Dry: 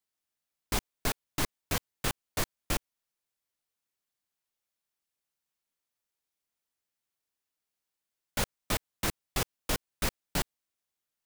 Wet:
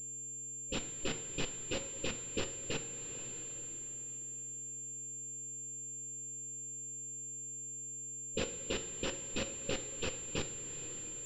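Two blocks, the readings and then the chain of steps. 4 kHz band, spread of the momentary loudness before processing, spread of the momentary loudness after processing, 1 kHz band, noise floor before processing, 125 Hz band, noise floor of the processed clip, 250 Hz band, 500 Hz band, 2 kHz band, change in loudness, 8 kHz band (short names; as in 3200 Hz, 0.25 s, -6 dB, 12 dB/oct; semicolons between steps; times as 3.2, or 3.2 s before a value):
-4.0 dB, 3 LU, 4 LU, -11.0 dB, under -85 dBFS, -7.0 dB, -44 dBFS, -3.0 dB, -0.5 dB, -6.0 dB, -5.5 dB, +4.0 dB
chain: band inversion scrambler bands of 1000 Hz; low-pass opened by the level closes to 930 Hz, open at -28 dBFS; two-slope reverb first 0.46 s, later 3.9 s, from -17 dB, DRR 7.5 dB; compressor 2:1, threshold -50 dBFS, peak gain reduction 14 dB; buzz 120 Hz, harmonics 28, -71 dBFS -5 dB/oct; FFT band-reject 570–2400 Hz; pulse-width modulation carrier 7300 Hz; gain +12.5 dB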